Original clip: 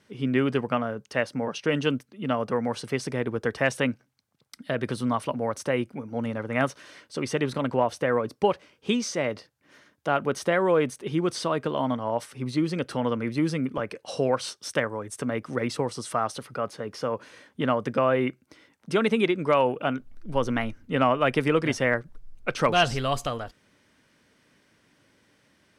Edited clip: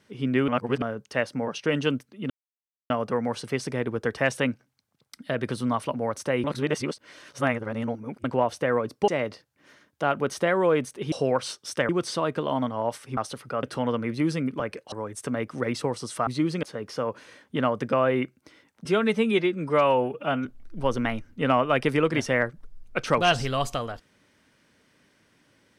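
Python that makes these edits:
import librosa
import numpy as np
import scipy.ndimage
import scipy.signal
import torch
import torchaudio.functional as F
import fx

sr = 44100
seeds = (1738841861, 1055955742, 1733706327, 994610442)

y = fx.edit(x, sr, fx.reverse_span(start_s=0.48, length_s=0.34),
    fx.insert_silence(at_s=2.3, length_s=0.6),
    fx.reverse_span(start_s=5.84, length_s=1.8),
    fx.cut(start_s=8.48, length_s=0.65),
    fx.swap(start_s=12.45, length_s=0.36, other_s=16.22, other_length_s=0.46),
    fx.move(start_s=14.1, length_s=0.77, to_s=11.17),
    fx.stretch_span(start_s=18.9, length_s=1.07, factor=1.5), tone=tone)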